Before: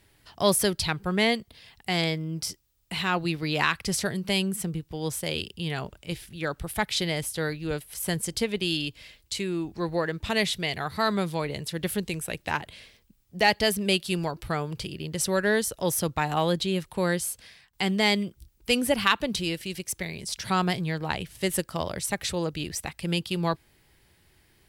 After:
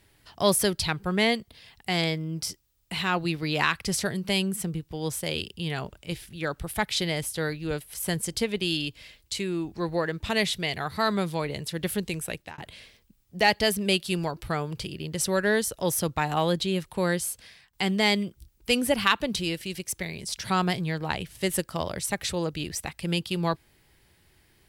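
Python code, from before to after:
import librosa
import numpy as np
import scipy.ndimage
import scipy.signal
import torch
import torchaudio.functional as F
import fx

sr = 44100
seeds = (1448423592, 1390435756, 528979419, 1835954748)

y = fx.edit(x, sr, fx.fade_out_span(start_s=12.3, length_s=0.28), tone=tone)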